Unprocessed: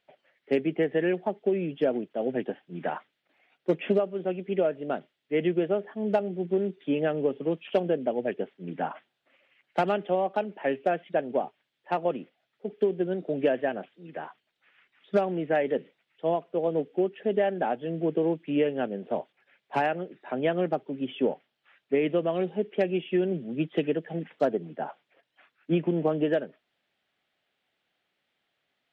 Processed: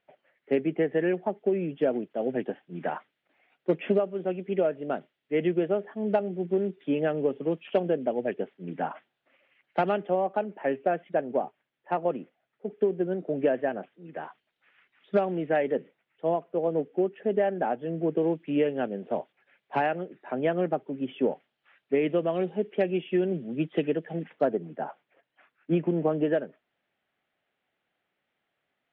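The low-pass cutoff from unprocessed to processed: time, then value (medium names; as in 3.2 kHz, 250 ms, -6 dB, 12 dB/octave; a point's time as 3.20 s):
2.5 kHz
from 1.82 s 3.1 kHz
from 10.01 s 2.1 kHz
from 14.17 s 3.4 kHz
from 15.67 s 2.2 kHz
from 18.17 s 3.2 kHz
from 20.05 s 2.5 kHz
from 21.32 s 3.4 kHz
from 24.33 s 2.4 kHz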